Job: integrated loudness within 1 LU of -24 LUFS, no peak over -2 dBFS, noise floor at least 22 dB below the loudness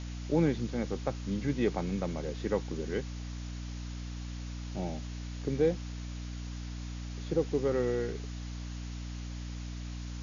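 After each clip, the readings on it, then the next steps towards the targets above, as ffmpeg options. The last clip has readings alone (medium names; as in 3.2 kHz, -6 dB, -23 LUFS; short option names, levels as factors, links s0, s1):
hum 60 Hz; highest harmonic 300 Hz; hum level -37 dBFS; noise floor -40 dBFS; noise floor target -57 dBFS; loudness -35.0 LUFS; peak level -15.0 dBFS; loudness target -24.0 LUFS
-> -af "bandreject=f=60:t=h:w=4,bandreject=f=120:t=h:w=4,bandreject=f=180:t=h:w=4,bandreject=f=240:t=h:w=4,bandreject=f=300:t=h:w=4"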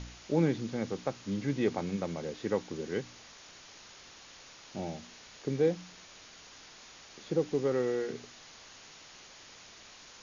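hum not found; noise floor -53 dBFS; noise floor target -56 dBFS
-> -af "afftdn=nr=6:nf=-53"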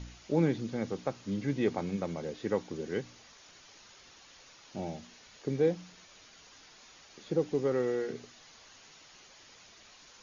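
noise floor -57 dBFS; loudness -33.5 LUFS; peak level -16.0 dBFS; loudness target -24.0 LUFS
-> -af "volume=2.99"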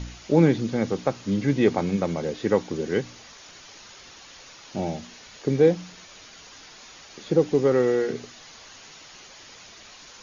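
loudness -24.0 LUFS; peak level -6.5 dBFS; noise floor -47 dBFS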